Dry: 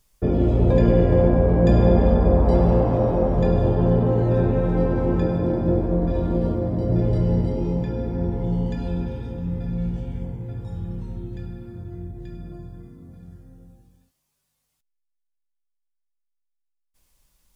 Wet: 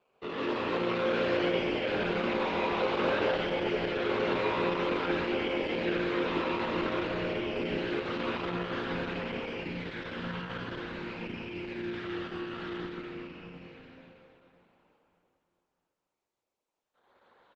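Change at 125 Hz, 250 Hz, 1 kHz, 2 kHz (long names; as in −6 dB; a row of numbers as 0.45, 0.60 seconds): −22.0, −11.0, −2.0, +8.5 decibels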